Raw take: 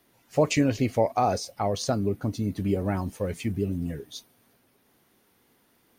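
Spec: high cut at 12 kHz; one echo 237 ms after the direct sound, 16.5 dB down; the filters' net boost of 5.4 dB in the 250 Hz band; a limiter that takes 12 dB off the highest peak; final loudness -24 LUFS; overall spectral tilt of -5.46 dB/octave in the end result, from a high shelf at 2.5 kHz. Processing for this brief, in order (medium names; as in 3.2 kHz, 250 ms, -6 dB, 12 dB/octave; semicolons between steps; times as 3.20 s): low-pass 12 kHz; peaking EQ 250 Hz +6.5 dB; treble shelf 2.5 kHz +3.5 dB; peak limiter -19 dBFS; delay 237 ms -16.5 dB; trim +5.5 dB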